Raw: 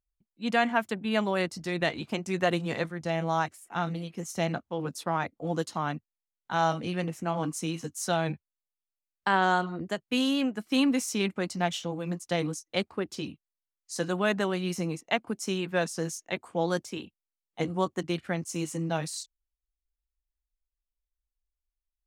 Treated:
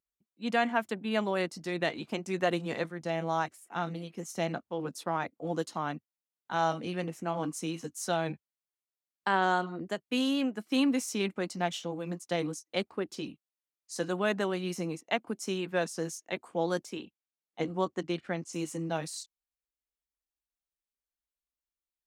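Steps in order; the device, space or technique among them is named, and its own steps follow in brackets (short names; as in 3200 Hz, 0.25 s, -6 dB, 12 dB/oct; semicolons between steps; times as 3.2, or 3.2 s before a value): 16.97–18.53 LPF 7000 Hz 12 dB/oct; filter by subtraction (in parallel: LPF 300 Hz 12 dB/oct + phase invert); on the sum: gain -3.5 dB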